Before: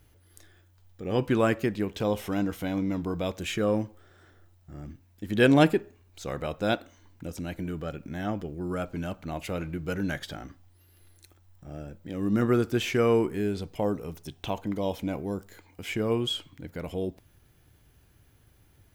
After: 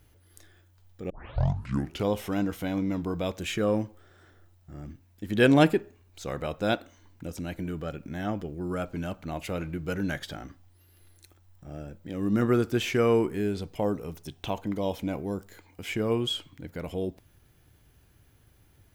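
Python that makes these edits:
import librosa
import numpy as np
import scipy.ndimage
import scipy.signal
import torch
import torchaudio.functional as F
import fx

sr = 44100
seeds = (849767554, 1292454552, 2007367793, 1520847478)

y = fx.edit(x, sr, fx.tape_start(start_s=1.1, length_s=1.0), tone=tone)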